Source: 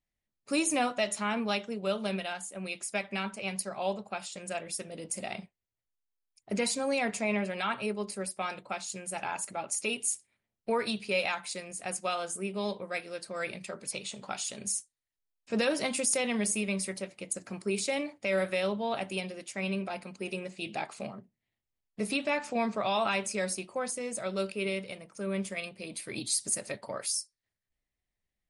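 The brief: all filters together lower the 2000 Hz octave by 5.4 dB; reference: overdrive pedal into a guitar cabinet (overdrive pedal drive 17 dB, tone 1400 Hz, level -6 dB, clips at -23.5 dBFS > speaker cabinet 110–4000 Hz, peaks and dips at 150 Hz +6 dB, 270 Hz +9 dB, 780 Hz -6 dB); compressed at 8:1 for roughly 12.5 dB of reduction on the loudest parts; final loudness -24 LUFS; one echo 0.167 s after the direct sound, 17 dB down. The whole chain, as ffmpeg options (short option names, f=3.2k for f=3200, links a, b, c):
-filter_complex "[0:a]equalizer=f=2k:t=o:g=-7,acompressor=threshold=-38dB:ratio=8,aecho=1:1:167:0.141,asplit=2[a][b];[b]highpass=f=720:p=1,volume=17dB,asoftclip=type=tanh:threshold=-23.5dB[c];[a][c]amix=inputs=2:normalize=0,lowpass=f=1.4k:p=1,volume=-6dB,highpass=110,equalizer=f=150:t=q:w=4:g=6,equalizer=f=270:t=q:w=4:g=9,equalizer=f=780:t=q:w=4:g=-6,lowpass=f=4k:w=0.5412,lowpass=f=4k:w=1.3066,volume=15dB"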